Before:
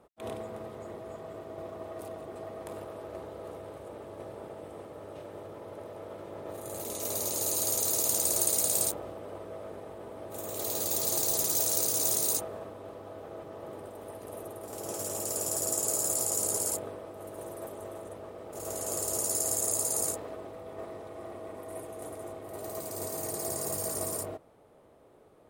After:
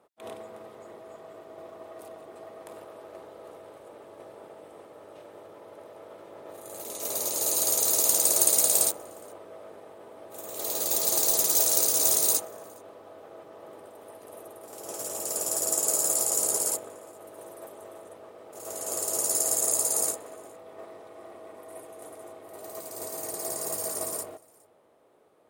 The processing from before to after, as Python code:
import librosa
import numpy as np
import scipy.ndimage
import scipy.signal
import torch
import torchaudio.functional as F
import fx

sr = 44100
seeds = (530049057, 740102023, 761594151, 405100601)

y = fx.highpass(x, sr, hz=400.0, slope=6)
y = y + 10.0 ** (-24.0 / 20.0) * np.pad(y, (int(413 * sr / 1000.0), 0))[:len(y)]
y = fx.upward_expand(y, sr, threshold_db=-41.0, expansion=1.5)
y = y * 10.0 ** (6.5 / 20.0)